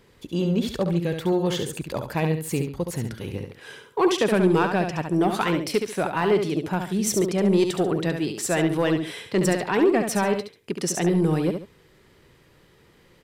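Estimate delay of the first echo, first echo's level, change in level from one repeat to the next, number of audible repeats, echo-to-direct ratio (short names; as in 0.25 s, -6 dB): 70 ms, -6.5 dB, -10.5 dB, 2, -6.0 dB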